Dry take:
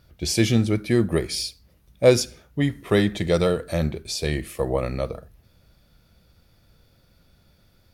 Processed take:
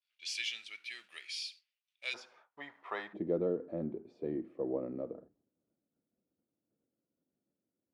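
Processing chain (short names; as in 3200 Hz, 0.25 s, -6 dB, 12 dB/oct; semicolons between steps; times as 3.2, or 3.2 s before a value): G.711 law mismatch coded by mu; expander -38 dBFS; ladder band-pass 3100 Hz, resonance 50%, from 2.13 s 1100 Hz, from 3.13 s 330 Hz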